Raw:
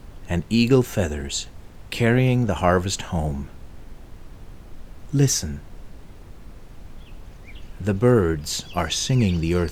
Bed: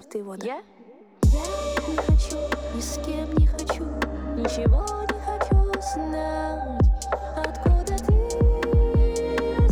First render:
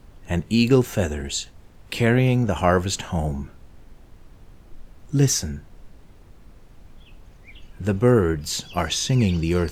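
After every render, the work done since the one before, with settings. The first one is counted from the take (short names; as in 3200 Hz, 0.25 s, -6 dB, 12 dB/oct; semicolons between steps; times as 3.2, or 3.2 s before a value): noise print and reduce 6 dB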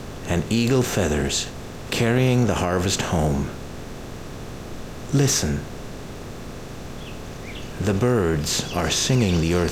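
per-bin compression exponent 0.6; limiter -10 dBFS, peak gain reduction 10 dB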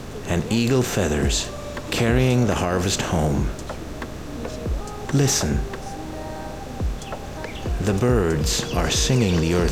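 add bed -7.5 dB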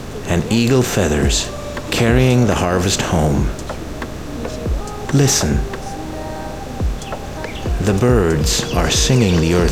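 gain +5.5 dB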